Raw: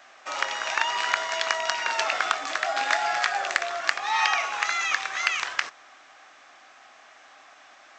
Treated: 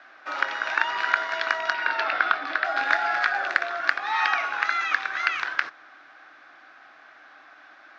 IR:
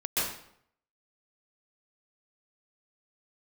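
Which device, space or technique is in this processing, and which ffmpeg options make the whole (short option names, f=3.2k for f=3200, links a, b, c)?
guitar cabinet: -filter_complex "[0:a]asettb=1/sr,asplit=3[a][b][c];[a]atrim=end=1.734[d];[b]atrim=start=1.73:end=2.65,asetpts=PTS-STARTPTS,afade=t=in:d=0.004:c=qsin,afade=t=out:st=0.916:d=0.004:c=qsin,lowpass=f=5k:w=0.5412,lowpass=f=5k:w=1.3066[e];[c]atrim=start=2.646[f];[d][e]acrossfade=d=0.004:c1=hsin:c2=qsin[g];[g][f]acrossfade=d=0.004:c1=qsin:c2=hsin,highpass=92,equalizer=f=140:t=q:w=4:g=6,equalizer=f=310:t=q:w=4:g=9,equalizer=f=1.5k:t=q:w=4:g=10,equalizer=f=3k:t=q:w=4:g=-4,lowpass=f=4.5k:w=0.5412,lowpass=f=4.5k:w=1.3066,volume=-2dB"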